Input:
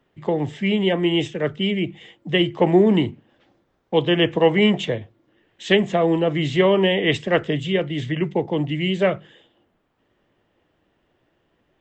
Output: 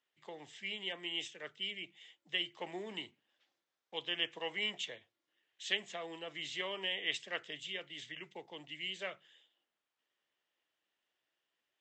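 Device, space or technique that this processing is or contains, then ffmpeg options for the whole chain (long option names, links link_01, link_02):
piezo pickup straight into a mixer: -af "lowpass=6900,aderivative,volume=-3.5dB"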